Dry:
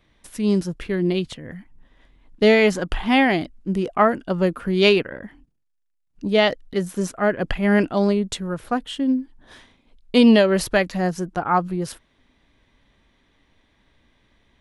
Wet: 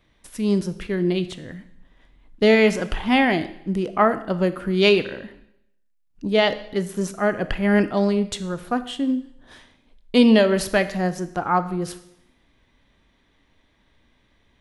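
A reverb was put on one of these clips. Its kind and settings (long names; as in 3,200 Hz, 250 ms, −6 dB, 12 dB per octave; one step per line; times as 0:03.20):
four-comb reverb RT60 0.76 s, combs from 25 ms, DRR 12 dB
level −1 dB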